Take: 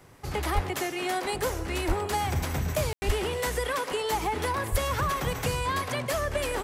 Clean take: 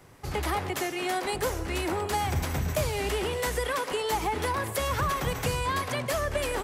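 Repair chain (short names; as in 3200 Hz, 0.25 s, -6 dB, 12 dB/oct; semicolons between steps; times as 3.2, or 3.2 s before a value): de-plosive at 0.54/1.87/3.06/4.71; room tone fill 2.93–3.02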